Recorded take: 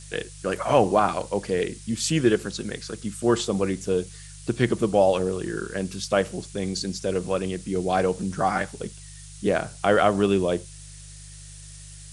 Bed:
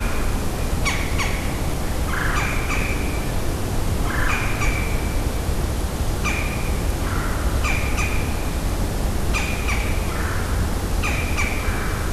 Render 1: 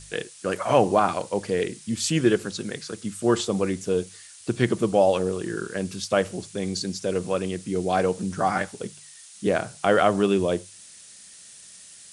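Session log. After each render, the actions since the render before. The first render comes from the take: de-hum 50 Hz, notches 3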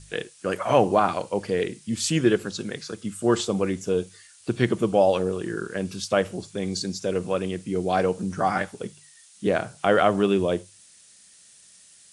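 noise print and reduce 6 dB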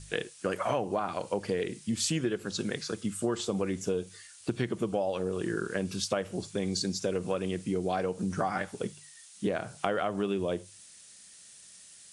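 compression 10:1, threshold -26 dBFS, peak gain reduction 13.5 dB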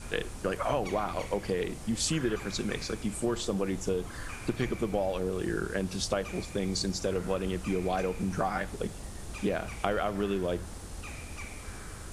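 add bed -20 dB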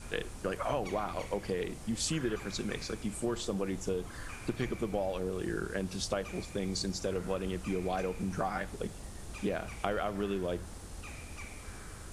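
trim -3.5 dB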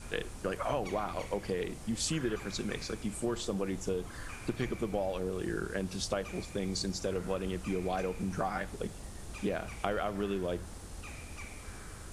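no audible change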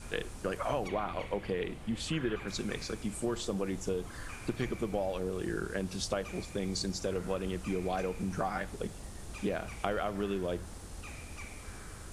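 0.88–2.48 s: resonant high shelf 4.2 kHz -8 dB, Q 1.5

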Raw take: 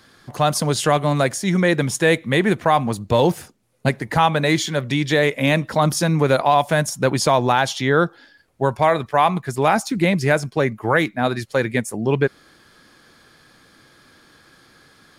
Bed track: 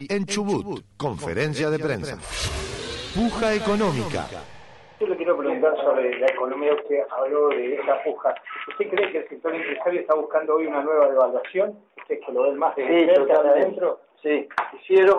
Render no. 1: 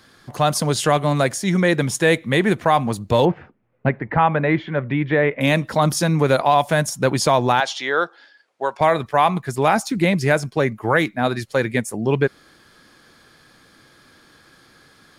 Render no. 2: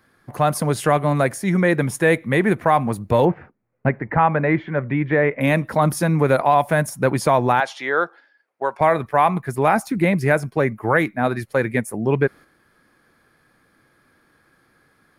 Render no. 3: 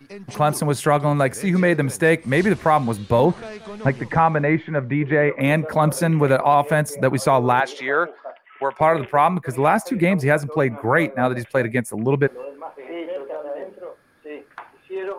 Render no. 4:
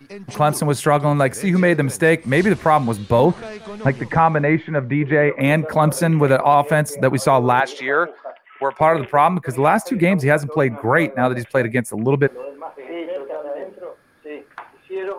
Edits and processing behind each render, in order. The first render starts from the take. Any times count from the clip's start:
3.25–5.41 s: low-pass 2.3 kHz 24 dB/octave; 7.60–8.81 s: band-pass 530–6400 Hz
gate -38 dBFS, range -7 dB; high-order bell 4.8 kHz -9.5 dB
add bed track -13.5 dB
trim +2 dB; peak limiter -3 dBFS, peak gain reduction 1 dB

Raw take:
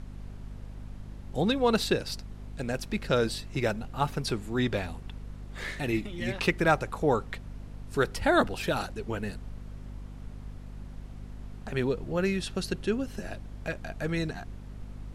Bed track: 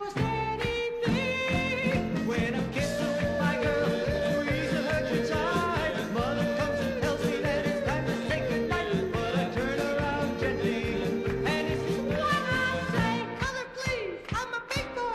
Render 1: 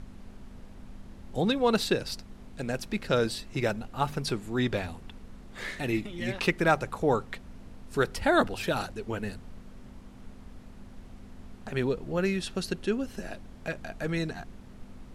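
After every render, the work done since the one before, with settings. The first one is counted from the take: de-hum 50 Hz, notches 3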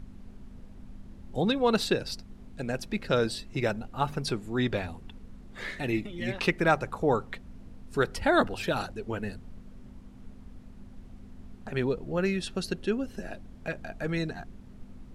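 noise reduction 6 dB, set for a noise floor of -48 dBFS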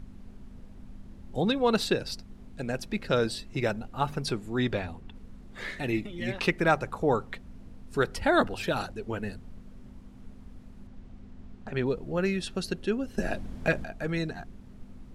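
4.73–5.14 s: treble shelf 8.9 kHz -> 5.1 kHz -9 dB; 10.87–11.86 s: distance through air 58 m; 13.18–13.84 s: gain +8.5 dB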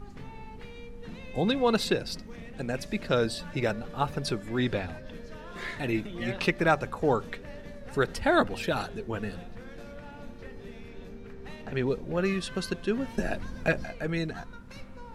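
add bed track -17.5 dB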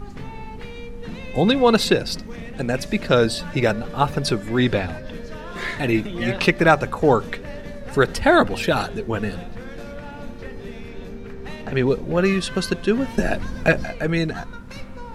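trim +9 dB; peak limiter -3 dBFS, peak gain reduction 2.5 dB

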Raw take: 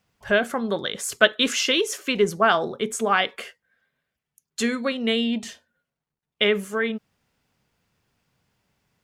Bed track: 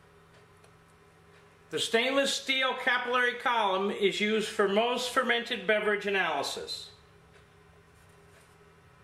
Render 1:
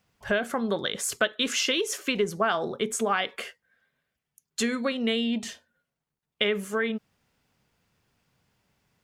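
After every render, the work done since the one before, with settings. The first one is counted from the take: compression 3:1, threshold -23 dBFS, peak gain reduction 10.5 dB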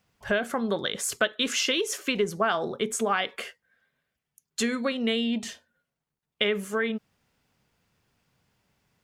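no audible change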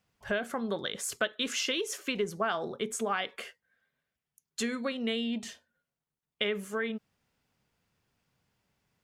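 trim -5.5 dB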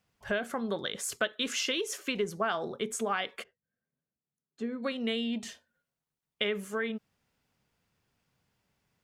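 3.42–4.82 s: band-pass filter 120 Hz -> 380 Hz, Q 0.89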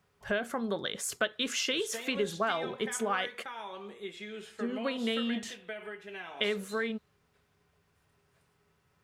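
add bed track -15 dB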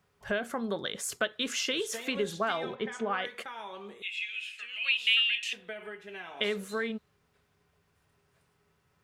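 2.75–3.25 s: distance through air 150 m; 4.02–5.53 s: resonant high-pass 2.6 kHz, resonance Q 13

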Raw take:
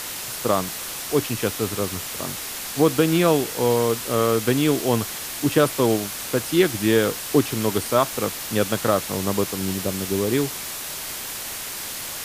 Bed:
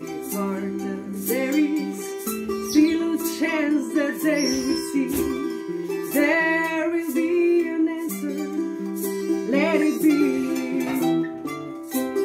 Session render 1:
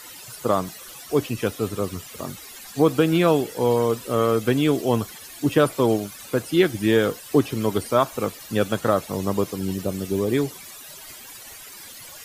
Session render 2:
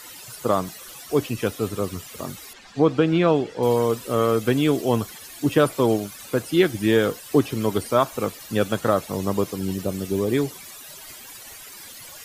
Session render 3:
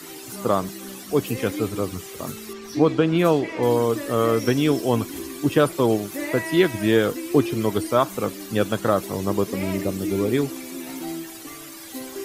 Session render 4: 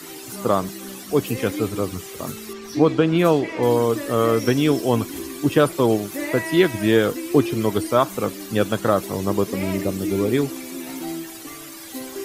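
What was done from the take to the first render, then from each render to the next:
noise reduction 15 dB, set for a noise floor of -32 dBFS
2.53–3.63 s: distance through air 130 m
add bed -10.5 dB
trim +1.5 dB

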